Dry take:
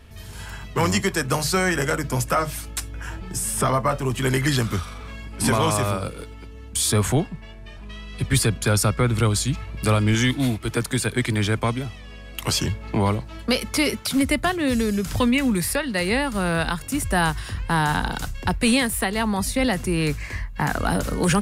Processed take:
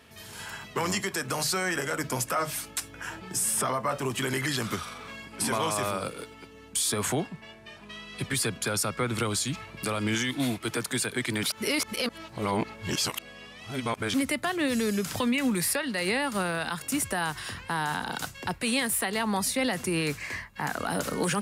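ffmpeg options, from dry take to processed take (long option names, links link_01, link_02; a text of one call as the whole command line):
ffmpeg -i in.wav -filter_complex "[0:a]asplit=3[link_01][link_02][link_03];[link_01]atrim=end=11.432[link_04];[link_02]atrim=start=11.428:end=14.142,asetpts=PTS-STARTPTS,areverse[link_05];[link_03]atrim=start=14.138[link_06];[link_04][link_05]acrossfade=duration=0.004:curve1=hsin:curve2=hsin[link_07];[link_07][link_06]acrossfade=duration=0.004:curve1=hsin:curve2=hsin,highpass=150,lowshelf=frequency=430:gain=-5,alimiter=limit=-18.5dB:level=0:latency=1:release=71" out.wav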